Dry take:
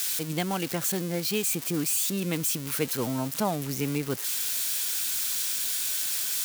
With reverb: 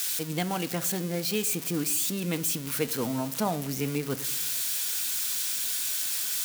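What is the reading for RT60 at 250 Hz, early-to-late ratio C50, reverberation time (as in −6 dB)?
1.0 s, 16.5 dB, 0.80 s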